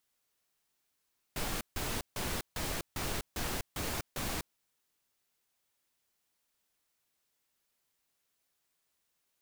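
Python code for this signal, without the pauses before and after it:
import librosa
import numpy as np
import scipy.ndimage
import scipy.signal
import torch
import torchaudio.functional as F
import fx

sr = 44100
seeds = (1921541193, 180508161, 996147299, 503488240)

y = fx.noise_burst(sr, seeds[0], colour='pink', on_s=0.25, off_s=0.15, bursts=8, level_db=-35.5)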